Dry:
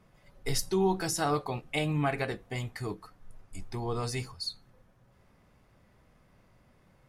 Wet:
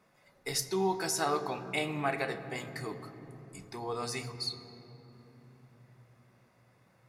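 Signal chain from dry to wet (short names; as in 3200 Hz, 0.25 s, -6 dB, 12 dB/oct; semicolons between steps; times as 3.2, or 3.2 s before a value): HPF 410 Hz 6 dB/oct; notch 3100 Hz, Q 8.6; on a send: reverb RT60 3.5 s, pre-delay 3 ms, DRR 9 dB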